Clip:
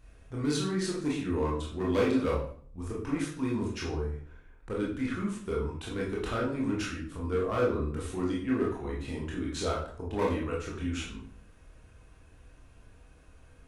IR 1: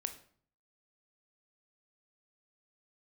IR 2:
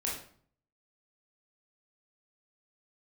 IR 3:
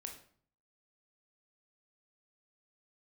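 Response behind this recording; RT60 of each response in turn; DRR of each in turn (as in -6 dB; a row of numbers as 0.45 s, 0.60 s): 2; 0.50 s, 0.50 s, 0.50 s; 7.0 dB, -5.0 dB, 2.0 dB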